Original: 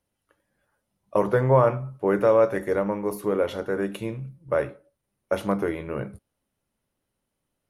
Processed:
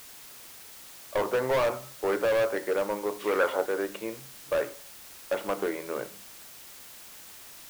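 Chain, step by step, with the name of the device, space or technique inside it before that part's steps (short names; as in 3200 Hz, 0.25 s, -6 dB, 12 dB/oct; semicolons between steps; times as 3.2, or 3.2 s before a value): aircraft radio (BPF 370–2700 Hz; hard clip -22 dBFS, distortion -7 dB; white noise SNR 16 dB); 3.19–3.65 bell 3200 Hz -> 660 Hz +11.5 dB 1.2 oct; notches 50/100/150/200 Hz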